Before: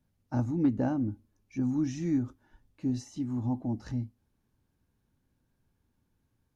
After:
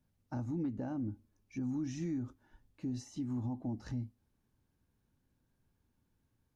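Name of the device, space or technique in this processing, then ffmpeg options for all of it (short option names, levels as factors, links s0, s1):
stacked limiters: -af "alimiter=limit=0.0631:level=0:latency=1:release=269,alimiter=level_in=1.5:limit=0.0631:level=0:latency=1:release=94,volume=0.668,volume=0.75"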